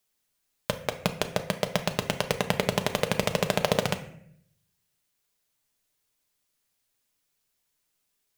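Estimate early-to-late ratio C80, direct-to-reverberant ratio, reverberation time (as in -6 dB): 15.0 dB, 6.0 dB, 0.65 s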